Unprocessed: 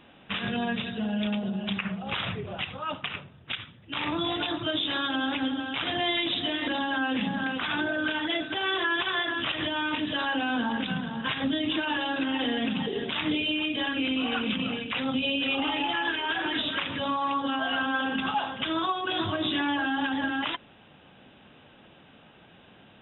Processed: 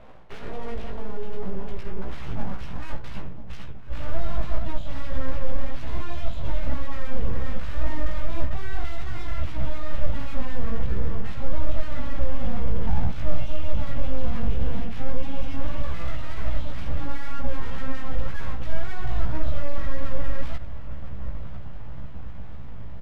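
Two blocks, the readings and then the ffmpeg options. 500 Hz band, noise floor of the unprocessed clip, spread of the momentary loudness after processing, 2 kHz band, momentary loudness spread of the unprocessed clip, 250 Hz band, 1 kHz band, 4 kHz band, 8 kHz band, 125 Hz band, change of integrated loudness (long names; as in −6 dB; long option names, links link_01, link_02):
−2.5 dB, −55 dBFS, 9 LU, −13.0 dB, 5 LU, −8.5 dB, −9.0 dB, −18.5 dB, can't be measured, +10.5 dB, −6.0 dB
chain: -af "areverse,acompressor=threshold=-37dB:ratio=6,areverse,highpass=99,aecho=1:1:997|1994|2991|3988|4985:0.133|0.0747|0.0418|0.0234|0.0131,asoftclip=type=tanh:threshold=-36.5dB,lowpass=1900,aeval=exprs='0.0158*(cos(1*acos(clip(val(0)/0.0158,-1,1)))-cos(1*PI/2))+0.00178*(cos(4*acos(clip(val(0)/0.0158,-1,1)))-cos(4*PI/2))+0.000501*(cos(7*acos(clip(val(0)/0.0158,-1,1)))-cos(7*PI/2))':channel_layout=same,equalizer=frequency=330:width_type=o:width=2:gain=14,aeval=exprs='abs(val(0))':channel_layout=same,flanger=delay=15:depth=2.8:speed=1.9,asubboost=boost=6.5:cutoff=180,volume=5dB"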